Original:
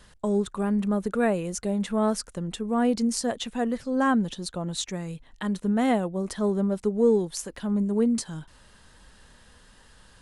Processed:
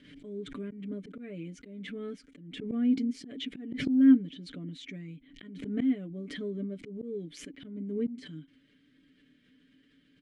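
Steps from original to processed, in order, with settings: vowel filter i; high shelf 2100 Hz -10 dB; comb 6.9 ms, depth 73%; auto swell 0.225 s; backwards sustainer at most 59 dB/s; gain +5.5 dB

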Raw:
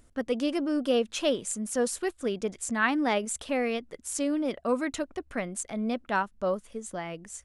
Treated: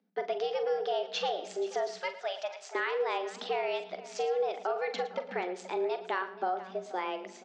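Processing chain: steep low-pass 5100 Hz 36 dB/oct; gate with hold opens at -48 dBFS; 1.96–2.75 HPF 510 Hz 24 dB/oct; in parallel at +2.5 dB: limiter -21.5 dBFS, peak gain reduction 9.5 dB; on the sum: compressor, threshold -24 dBFS, peak gain reduction 8.5 dB; frequency shift +180 Hz; tapped delay 41/45/51/112/480 ms -11.5/-17.5/-17.5/-15.5/-17.5 dB; on a send at -18 dB: reverb RT60 2.1 s, pre-delay 40 ms; on the sum: gain -5 dB

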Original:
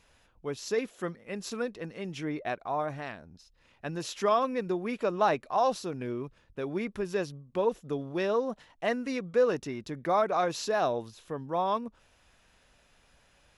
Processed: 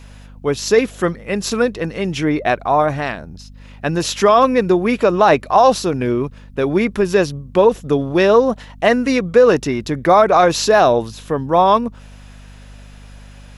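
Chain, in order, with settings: hum 50 Hz, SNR 24 dB; maximiser +17.5 dB; gain -1 dB

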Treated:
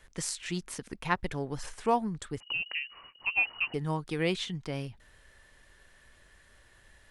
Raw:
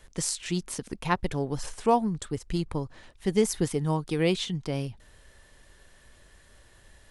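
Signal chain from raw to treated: bell 1800 Hz +6 dB 1.5 oct; 2.4–3.74 inverted band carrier 2900 Hz; gain -5.5 dB

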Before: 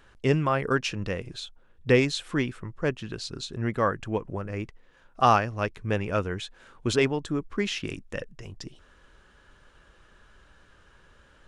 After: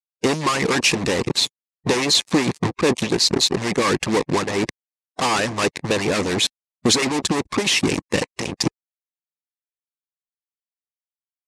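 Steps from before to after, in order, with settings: fuzz box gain 45 dB, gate -39 dBFS; speaker cabinet 130–9400 Hz, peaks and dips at 640 Hz -7 dB, 1400 Hz -10 dB, 3100 Hz -5 dB; harmonic-percussive split harmonic -15 dB; gain +3 dB

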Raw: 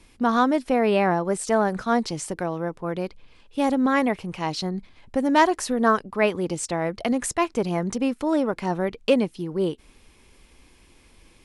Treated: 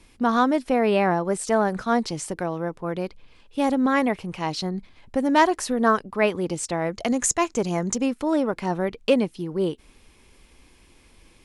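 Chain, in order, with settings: 6.92–8.06 bell 6800 Hz +13.5 dB 0.42 oct

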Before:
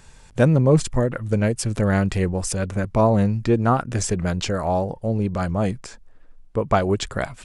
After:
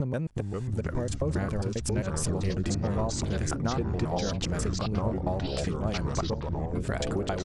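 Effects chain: slices in reverse order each 0.135 s, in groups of 5; compressor, threshold -26 dBFS, peak gain reduction 14.5 dB; outdoor echo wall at 220 m, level -10 dB; echoes that change speed 0.365 s, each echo -4 st, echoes 3; gain -2 dB

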